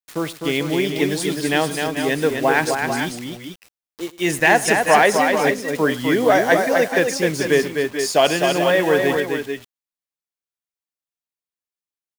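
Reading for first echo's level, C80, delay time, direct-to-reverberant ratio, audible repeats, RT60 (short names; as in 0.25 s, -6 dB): -20.0 dB, none, 0.104 s, none, 3, none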